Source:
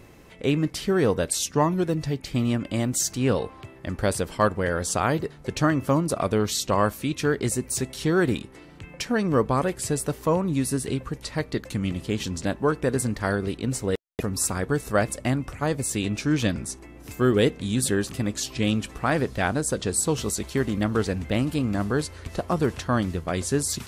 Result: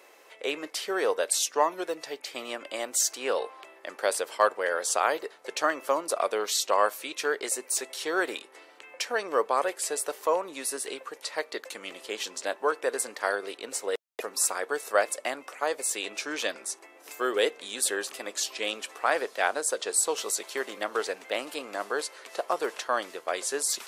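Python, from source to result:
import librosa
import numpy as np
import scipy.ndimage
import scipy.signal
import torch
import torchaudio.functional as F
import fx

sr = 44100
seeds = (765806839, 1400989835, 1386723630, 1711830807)

y = scipy.signal.sosfilt(scipy.signal.butter(4, 470.0, 'highpass', fs=sr, output='sos'), x)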